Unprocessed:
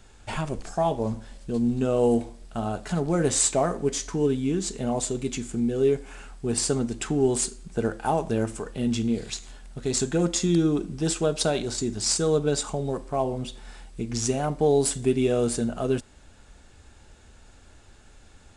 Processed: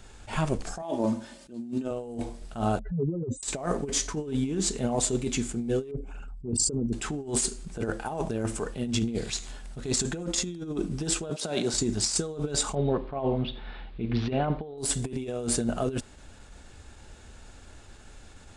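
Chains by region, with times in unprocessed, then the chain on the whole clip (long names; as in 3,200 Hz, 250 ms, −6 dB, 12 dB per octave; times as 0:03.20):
0:00.82–0:01.91: Chebyshev high-pass filter 170 Hz + comb filter 3.3 ms, depth 67%
0:02.79–0:03.43: expanding power law on the bin magnitudes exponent 3.5 + low-pass filter 2,200 Hz
0:05.91–0:06.93: spectral envelope exaggerated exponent 2 + parametric band 1,800 Hz −15 dB 0.35 octaves
0:11.30–0:11.74: high-pass filter 130 Hz 24 dB per octave + downward expander −31 dBFS
0:12.75–0:14.78: Butterworth low-pass 4,000 Hz 48 dB per octave + single-tap delay 84 ms −20.5 dB
whole clip: compressor whose output falls as the input rises −27 dBFS, ratio −0.5; level that may rise only so fast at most 160 dB per second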